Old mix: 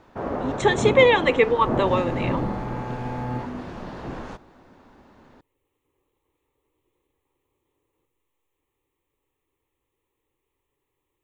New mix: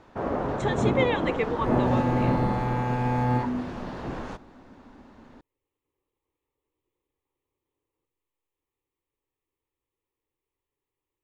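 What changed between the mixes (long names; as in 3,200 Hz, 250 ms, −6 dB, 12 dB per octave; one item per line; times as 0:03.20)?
speech −10.0 dB
second sound +6.0 dB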